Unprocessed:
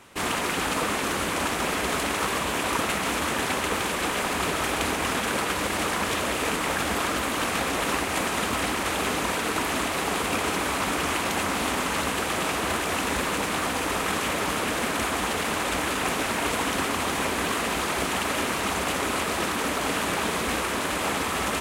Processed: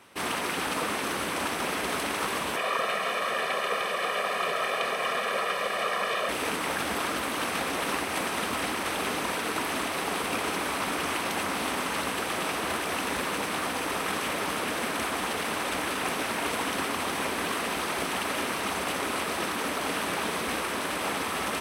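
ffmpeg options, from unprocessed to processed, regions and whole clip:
-filter_complex "[0:a]asettb=1/sr,asplit=3[s0][s1][s2];[s0]atrim=end=2.564[s3];[s1]atrim=start=2.56:end=6.29,asetpts=PTS-STARTPTS,afade=t=in:d=0.004:c=qsin,afade=t=out:st=3.726:d=0.004:c=qsin,acrossover=split=3800[s4][s5];[s5]acompressor=threshold=0.00708:ratio=4:attack=1:release=60[s6];[s4][s6]amix=inputs=2:normalize=0,highpass=260,aecho=1:1:1.7:0.83,atrim=end_sample=164493[s7];[s2]atrim=start=6.286[s8];[s3][s7]acrossfade=d=0.004:c1=hsin:c2=qsin[s9];[s9][s8]acrossfade=d=0.004:c1=qsin:c2=hsin,highpass=f=150:p=1,bandreject=f=7000:w=6,volume=0.708"

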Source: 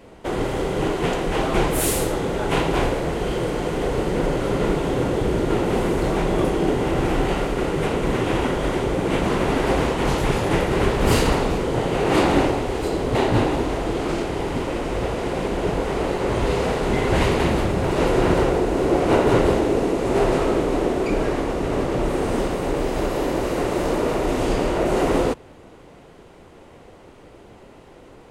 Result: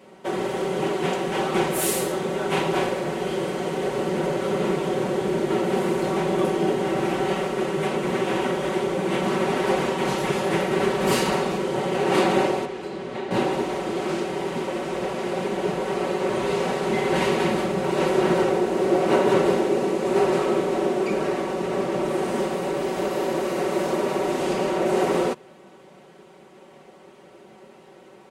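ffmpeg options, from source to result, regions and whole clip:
-filter_complex "[0:a]asettb=1/sr,asplit=3[s0][s1][s2];[s0]atrim=end=12.654[s3];[s1]atrim=start=12.65:end=13.31,asetpts=PTS-STARTPTS,afade=t=in:d=0.004:c=qsin,afade=t=out:st=0.656:d=0.004:c=qsin,highpass=f=150:p=1,aemphasis=mode=reproduction:type=bsi,acrossover=split=200|1300|3500[s4][s5][s6][s7];[s4]acompressor=threshold=0.0158:ratio=3[s8];[s5]acompressor=threshold=0.0251:ratio=3[s9];[s6]acompressor=threshold=0.00794:ratio=3[s10];[s7]acompressor=threshold=0.00282:ratio=3[s11];[s8][s9][s10][s11]amix=inputs=4:normalize=0[s12];[s2]atrim=start=13.306[s13];[s3][s12]acrossfade=d=0.004:c1=hsin:c2=qsin[s14];[s14][s13]acrossfade=d=0.004:c1=qsin:c2=hsin,highpass=170,aecho=1:1:5.3:0.76,volume=0.668"

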